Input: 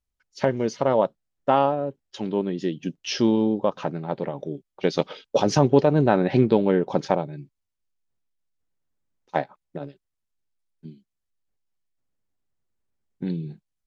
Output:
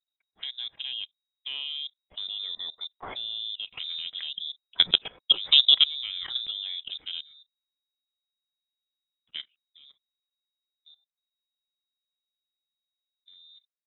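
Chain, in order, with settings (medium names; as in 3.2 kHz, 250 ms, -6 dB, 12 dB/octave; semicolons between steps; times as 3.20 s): Doppler pass-by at 4.66 s, 5 m/s, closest 6.9 m; level held to a coarse grid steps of 19 dB; frequency inversion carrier 3.8 kHz; trim +3.5 dB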